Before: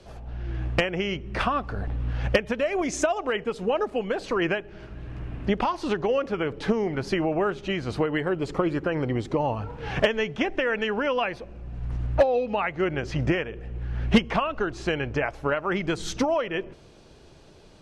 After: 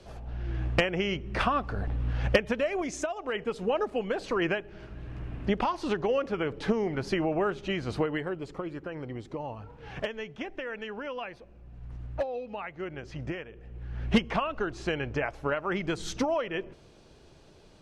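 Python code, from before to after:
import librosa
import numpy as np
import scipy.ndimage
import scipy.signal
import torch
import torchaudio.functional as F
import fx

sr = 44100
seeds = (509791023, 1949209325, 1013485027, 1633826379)

y = fx.gain(x, sr, db=fx.line((2.53, -1.5), (3.14, -9.5), (3.43, -3.0), (8.01, -3.0), (8.56, -11.5), (13.5, -11.5), (14.22, -4.0)))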